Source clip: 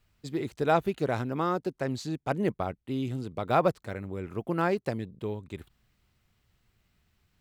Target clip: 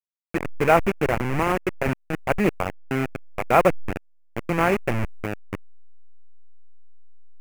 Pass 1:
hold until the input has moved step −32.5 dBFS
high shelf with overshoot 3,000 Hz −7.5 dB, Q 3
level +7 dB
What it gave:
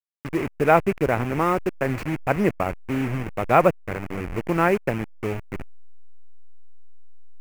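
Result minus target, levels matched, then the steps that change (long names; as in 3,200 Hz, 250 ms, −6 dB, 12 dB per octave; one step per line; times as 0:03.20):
hold until the input has moved: distortion −7 dB
change: hold until the input has moved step −25 dBFS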